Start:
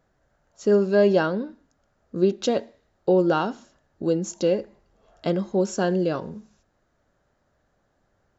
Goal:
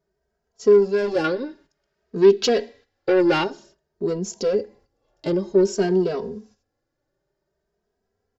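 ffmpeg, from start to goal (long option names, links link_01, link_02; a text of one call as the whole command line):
ffmpeg -i in.wav -filter_complex "[0:a]asoftclip=type=tanh:threshold=-19.5dB,equalizer=frequency=400:width_type=o:width=0.33:gain=12,equalizer=frequency=1250:width_type=o:width=0.33:gain=-5,equalizer=frequency=5000:width_type=o:width=0.33:gain=8,agate=range=-10dB:threshold=-51dB:ratio=16:detection=peak,asettb=1/sr,asplit=3[link_01][link_02][link_03];[link_01]atrim=end=1.244[link_04];[link_02]atrim=start=1.24:end=3.44,asetpts=PTS-STARTPTS,afade=type=in:duration=0.004:curve=qsin,afade=type=out:start_time=2.196:duration=0.004:curve=qsin,equalizer=frequency=2500:width=0.58:gain=11[link_05];[link_03]atrim=start=3.436[link_06];[link_04][link_05]acrossfade=duration=0.004:curve1=hsin:curve2=qsin[link_07];[link_07][link_06]acrossfade=duration=0.004:curve1=qsin:curve2=hsin,asplit=2[link_08][link_09];[link_09]adelay=2.8,afreqshift=0.53[link_10];[link_08][link_10]amix=inputs=2:normalize=1,volume=3dB" out.wav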